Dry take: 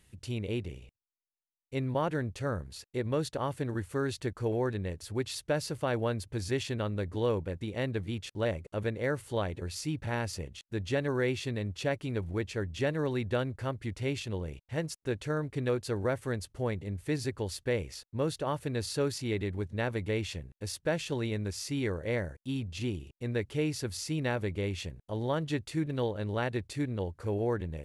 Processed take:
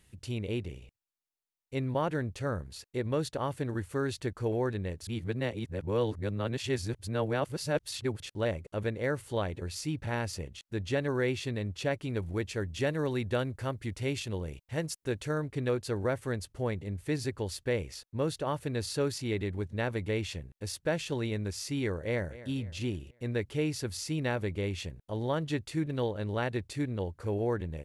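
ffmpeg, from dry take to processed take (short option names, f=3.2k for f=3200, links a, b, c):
-filter_complex "[0:a]asettb=1/sr,asplit=3[a][b][c];[a]atrim=end=12.164[d];[b]atrim=start=12.16:end=15.42,asetpts=PTS-STARTPTS,afade=t=in:d=0.004:c=qsin,afade=t=out:st=3.256:d=0.004:c=qsin,highshelf=f=6.5k:g=6[e];[c]atrim=start=15.416[f];[d][e]acrossfade=d=0.004:c1=hsin:c2=qsin[g];[g][f]acrossfade=d=0.004:c1=qsin:c2=hsin,asplit=2[h][i];[i]afade=t=in:st=21.93:d=0.01,afade=t=out:st=22.37:d=0.01,aecho=0:1:250|500|750|1000:0.149624|0.0673306|0.0302988|0.0136344[j];[h][j]amix=inputs=2:normalize=0,asplit=3[k][l][m];[k]atrim=end=5.072[n];[l]atrim=start=5.068:end=8.202,asetpts=PTS-STARTPTS,areverse[o];[m]atrim=start=8.198[p];[n][o]acrossfade=d=0.004:c1=hsin:c2=hsin[q];[q][p]acrossfade=d=0.004:c1=hsin:c2=hsin"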